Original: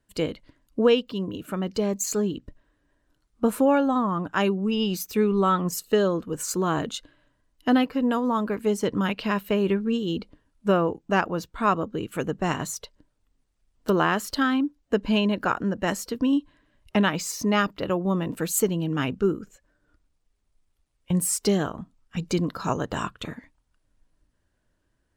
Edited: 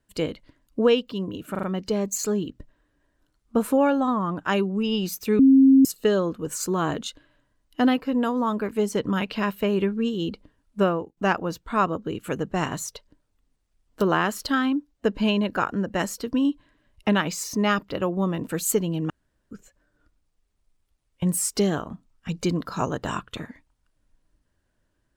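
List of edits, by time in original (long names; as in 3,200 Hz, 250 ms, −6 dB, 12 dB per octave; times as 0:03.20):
0:01.51: stutter 0.04 s, 4 plays
0:05.27–0:05.73: beep over 268 Hz −10.5 dBFS
0:10.72–0:11.05: fade out, to −16.5 dB
0:18.98–0:19.39: fill with room tone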